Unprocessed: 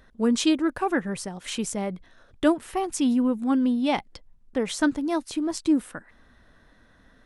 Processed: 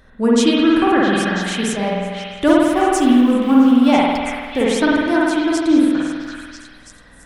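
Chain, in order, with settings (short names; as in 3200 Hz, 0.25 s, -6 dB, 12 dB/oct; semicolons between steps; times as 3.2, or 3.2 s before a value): 2.47–4.64 G.711 law mismatch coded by mu; delay with a stepping band-pass 0.331 s, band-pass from 1700 Hz, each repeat 0.7 oct, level -2.5 dB; spring tank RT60 1.5 s, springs 49 ms, chirp 55 ms, DRR -4.5 dB; gain +4.5 dB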